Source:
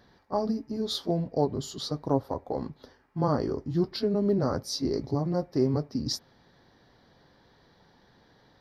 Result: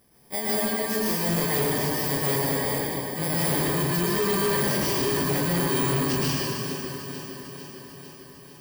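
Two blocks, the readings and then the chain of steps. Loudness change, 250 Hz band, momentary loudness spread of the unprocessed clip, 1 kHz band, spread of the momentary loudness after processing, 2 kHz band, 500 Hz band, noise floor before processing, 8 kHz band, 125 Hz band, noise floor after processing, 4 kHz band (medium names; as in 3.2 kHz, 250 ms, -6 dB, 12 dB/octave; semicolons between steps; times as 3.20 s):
+5.0 dB, +1.5 dB, 7 LU, +5.5 dB, 15 LU, +22.0 dB, +2.5 dB, -62 dBFS, +14.0 dB, +3.5 dB, -47 dBFS, +6.0 dB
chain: bit-reversed sample order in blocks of 32 samples; bass shelf 370 Hz -4 dB; echo whose repeats swap between lows and highs 225 ms, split 1.3 kHz, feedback 80%, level -10 dB; plate-style reverb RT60 2.4 s, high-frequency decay 0.8×, pre-delay 105 ms, DRR -8 dB; overload inside the chain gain 20 dB; trim -1 dB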